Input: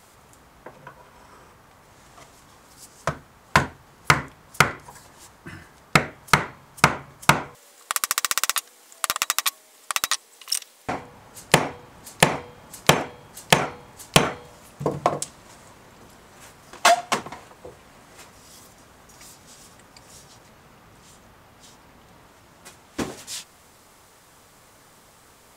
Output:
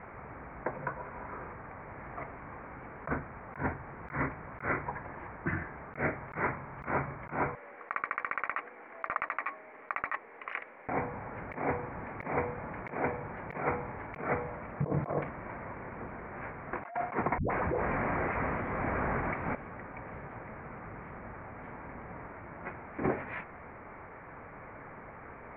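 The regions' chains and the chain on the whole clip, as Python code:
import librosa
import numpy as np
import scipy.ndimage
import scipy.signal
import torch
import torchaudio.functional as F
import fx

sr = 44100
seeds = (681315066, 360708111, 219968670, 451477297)

y = fx.chain(x, sr, fx.dispersion(late='highs', ms=121.0, hz=360.0),
    fx.env_flatten(amount_pct=100), at=(17.38, 19.55))
y = scipy.signal.sosfilt(scipy.signal.cheby1(6, 1.0, 2300.0, 'lowpass', fs=sr, output='sos'), y)
y = fx.over_compress(y, sr, threshold_db=-34.0, ratio=-1.0)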